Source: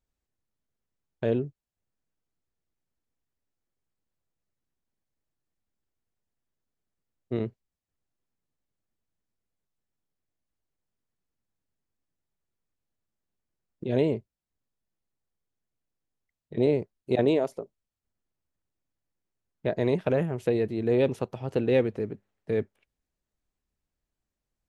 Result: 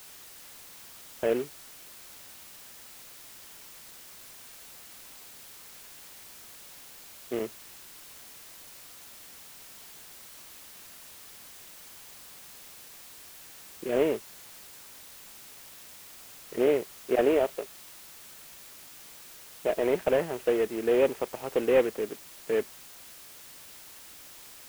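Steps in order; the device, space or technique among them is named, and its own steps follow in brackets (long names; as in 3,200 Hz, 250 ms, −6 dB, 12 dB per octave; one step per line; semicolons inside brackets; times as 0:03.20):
army field radio (band-pass filter 400–3,200 Hz; variable-slope delta modulation 16 kbit/s; white noise bed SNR 15 dB)
level +3.5 dB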